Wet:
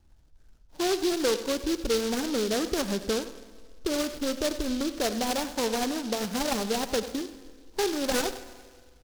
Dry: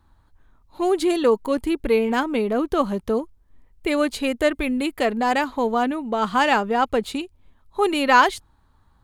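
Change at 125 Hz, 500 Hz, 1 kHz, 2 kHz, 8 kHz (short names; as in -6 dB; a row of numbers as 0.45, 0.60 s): n/a, -7.0 dB, -13.0 dB, -11.5 dB, +6.5 dB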